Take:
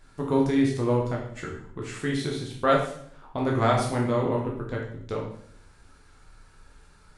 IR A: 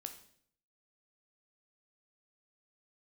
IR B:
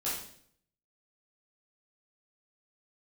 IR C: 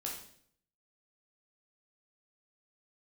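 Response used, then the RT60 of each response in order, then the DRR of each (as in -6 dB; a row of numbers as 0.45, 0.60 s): C; 0.60, 0.60, 0.60 s; 6.0, -9.5, -2.5 dB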